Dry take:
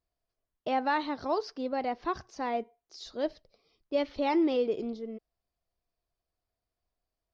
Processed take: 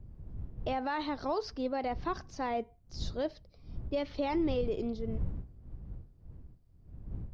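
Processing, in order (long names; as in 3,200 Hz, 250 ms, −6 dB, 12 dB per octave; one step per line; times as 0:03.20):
wind on the microphone 82 Hz −40 dBFS
brickwall limiter −23.5 dBFS, peak gain reduction 9 dB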